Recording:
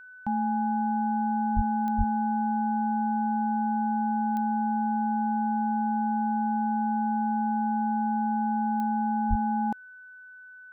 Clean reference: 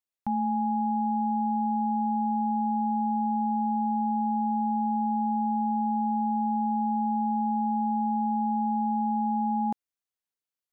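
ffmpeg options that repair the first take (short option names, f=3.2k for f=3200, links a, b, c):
-filter_complex "[0:a]adeclick=t=4,bandreject=f=1.5k:w=30,asplit=3[a][b][c];[a]afade=t=out:st=1.55:d=0.02[d];[b]highpass=f=140:w=0.5412,highpass=f=140:w=1.3066,afade=t=in:st=1.55:d=0.02,afade=t=out:st=1.67:d=0.02[e];[c]afade=t=in:st=1.67:d=0.02[f];[d][e][f]amix=inputs=3:normalize=0,asplit=3[g][h][i];[g]afade=t=out:st=1.97:d=0.02[j];[h]highpass=f=140:w=0.5412,highpass=f=140:w=1.3066,afade=t=in:st=1.97:d=0.02,afade=t=out:st=2.09:d=0.02[k];[i]afade=t=in:st=2.09:d=0.02[l];[j][k][l]amix=inputs=3:normalize=0,asplit=3[m][n][o];[m]afade=t=out:st=9.29:d=0.02[p];[n]highpass=f=140:w=0.5412,highpass=f=140:w=1.3066,afade=t=in:st=9.29:d=0.02,afade=t=out:st=9.41:d=0.02[q];[o]afade=t=in:st=9.41:d=0.02[r];[p][q][r]amix=inputs=3:normalize=0"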